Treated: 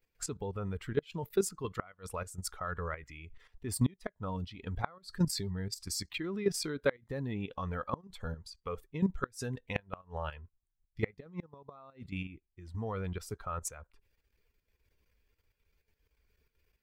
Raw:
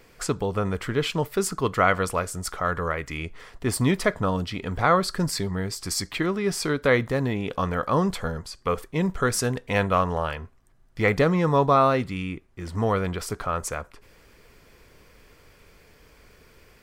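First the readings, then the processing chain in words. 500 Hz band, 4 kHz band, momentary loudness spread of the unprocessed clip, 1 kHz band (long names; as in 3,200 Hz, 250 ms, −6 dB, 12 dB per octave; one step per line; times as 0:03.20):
−13.0 dB, −11.0 dB, 10 LU, −17.0 dB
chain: spectral dynamics exaggerated over time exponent 1.5
output level in coarse steps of 12 dB
gate with flip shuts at −17 dBFS, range −29 dB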